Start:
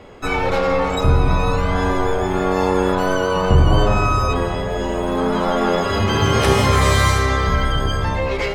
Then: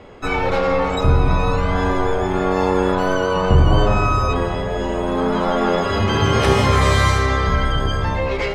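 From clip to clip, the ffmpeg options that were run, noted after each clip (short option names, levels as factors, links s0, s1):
-af "highshelf=f=9400:g=-11.5"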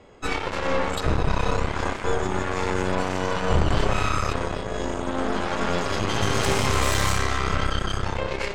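-af "lowpass=f=7800:t=q:w=3,aeval=exprs='0.891*(cos(1*acos(clip(val(0)/0.891,-1,1)))-cos(1*PI/2))+0.112*(cos(3*acos(clip(val(0)/0.891,-1,1)))-cos(3*PI/2))+0.0562*(cos(5*acos(clip(val(0)/0.891,-1,1)))-cos(5*PI/2))+0.1*(cos(6*acos(clip(val(0)/0.891,-1,1)))-cos(6*PI/2))+0.251*(cos(8*acos(clip(val(0)/0.891,-1,1)))-cos(8*PI/2))':c=same,volume=0.376"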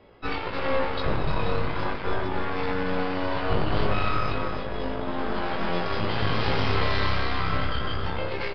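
-filter_complex "[0:a]flanger=delay=17.5:depth=2.3:speed=0.36,asplit=2[s0][s1];[s1]aecho=0:1:298:0.355[s2];[s0][s2]amix=inputs=2:normalize=0,aresample=11025,aresample=44100"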